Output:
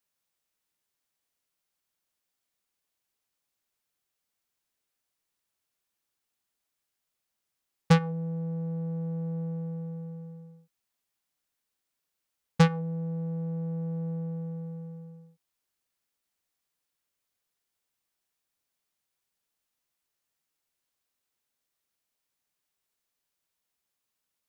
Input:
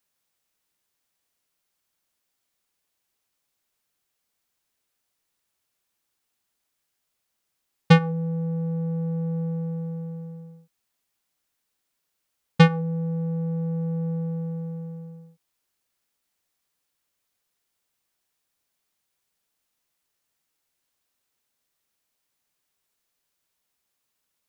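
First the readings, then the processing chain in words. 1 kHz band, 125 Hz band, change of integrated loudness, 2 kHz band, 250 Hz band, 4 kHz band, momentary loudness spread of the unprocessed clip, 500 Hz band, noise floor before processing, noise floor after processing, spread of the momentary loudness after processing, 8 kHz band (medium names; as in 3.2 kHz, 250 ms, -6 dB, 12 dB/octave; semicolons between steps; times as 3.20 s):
-5.0 dB, -5.5 dB, -5.5 dB, -8.0 dB, -5.5 dB, -7.0 dB, 19 LU, -5.5 dB, -79 dBFS, -84 dBFS, 19 LU, no reading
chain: loudspeaker Doppler distortion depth 0.67 ms; trim -5.5 dB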